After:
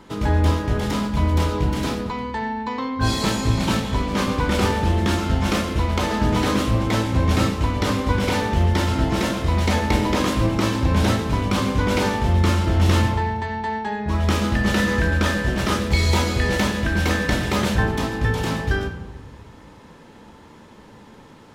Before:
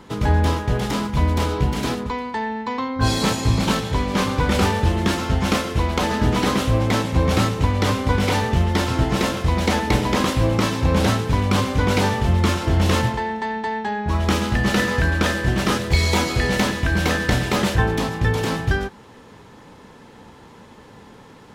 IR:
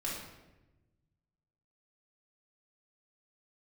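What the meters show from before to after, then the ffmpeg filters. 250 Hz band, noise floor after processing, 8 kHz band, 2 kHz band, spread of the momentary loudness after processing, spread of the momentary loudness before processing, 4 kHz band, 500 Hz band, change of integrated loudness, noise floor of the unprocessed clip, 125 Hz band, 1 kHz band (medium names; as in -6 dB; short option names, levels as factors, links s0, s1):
0.0 dB, -46 dBFS, -2.0 dB, -1.0 dB, 6 LU, 5 LU, -1.5 dB, -1.5 dB, -0.5 dB, -45 dBFS, -0.5 dB, -1.0 dB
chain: -filter_complex "[0:a]asplit=2[s0][s1];[1:a]atrim=start_sample=2205[s2];[s1][s2]afir=irnorm=-1:irlink=0,volume=0.562[s3];[s0][s3]amix=inputs=2:normalize=0,volume=0.562"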